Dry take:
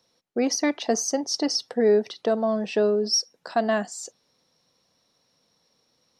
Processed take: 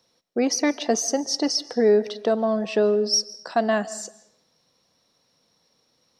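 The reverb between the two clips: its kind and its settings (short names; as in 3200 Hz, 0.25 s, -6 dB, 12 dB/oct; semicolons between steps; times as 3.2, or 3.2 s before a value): digital reverb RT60 0.75 s, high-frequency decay 0.85×, pre-delay 0.105 s, DRR 18.5 dB; gain +1.5 dB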